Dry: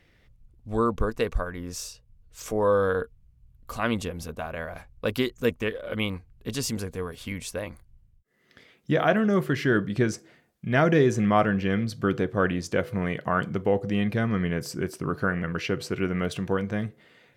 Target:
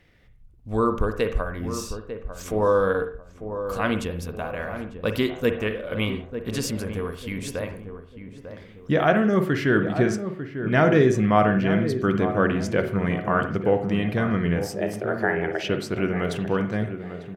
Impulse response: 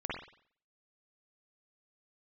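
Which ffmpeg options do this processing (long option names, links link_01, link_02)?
-filter_complex "[0:a]asplit=3[link_01][link_02][link_03];[link_01]afade=type=out:start_time=14.62:duration=0.02[link_04];[link_02]afreqshift=230,afade=type=in:start_time=14.62:duration=0.02,afade=type=out:start_time=15.68:duration=0.02[link_05];[link_03]afade=type=in:start_time=15.68:duration=0.02[link_06];[link_04][link_05][link_06]amix=inputs=3:normalize=0,asplit=2[link_07][link_08];[link_08]adelay=897,lowpass=frequency=1100:poles=1,volume=-9dB,asplit=2[link_09][link_10];[link_10]adelay=897,lowpass=frequency=1100:poles=1,volume=0.4,asplit=2[link_11][link_12];[link_12]adelay=897,lowpass=frequency=1100:poles=1,volume=0.4,asplit=2[link_13][link_14];[link_14]adelay=897,lowpass=frequency=1100:poles=1,volume=0.4[link_15];[link_07][link_09][link_11][link_13][link_15]amix=inputs=5:normalize=0,asplit=2[link_16][link_17];[1:a]atrim=start_sample=2205,afade=type=out:start_time=0.23:duration=0.01,atrim=end_sample=10584,lowpass=4100[link_18];[link_17][link_18]afir=irnorm=-1:irlink=0,volume=-9dB[link_19];[link_16][link_19]amix=inputs=2:normalize=0"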